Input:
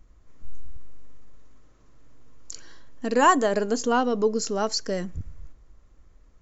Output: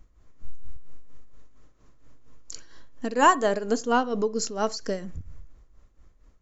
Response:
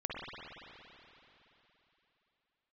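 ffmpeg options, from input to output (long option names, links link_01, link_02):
-filter_complex "[0:a]tremolo=f=4.3:d=0.68,asplit=2[link_01][link_02];[1:a]atrim=start_sample=2205,atrim=end_sample=4410[link_03];[link_02][link_03]afir=irnorm=-1:irlink=0,volume=-16.5dB[link_04];[link_01][link_04]amix=inputs=2:normalize=0"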